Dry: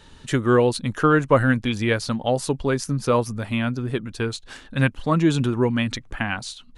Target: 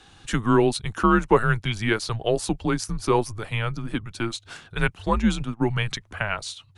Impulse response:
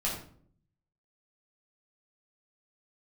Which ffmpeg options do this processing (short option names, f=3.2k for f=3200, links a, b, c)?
-filter_complex "[0:a]asplit=3[a][b][c];[a]afade=t=out:st=5.11:d=0.02[d];[b]agate=range=-21dB:threshold=-20dB:ratio=16:detection=peak,afade=t=in:st=5.11:d=0.02,afade=t=out:st=5.66:d=0.02[e];[c]afade=t=in:st=5.66:d=0.02[f];[d][e][f]amix=inputs=3:normalize=0,lowshelf=f=140:g=-10.5,afreqshift=-110"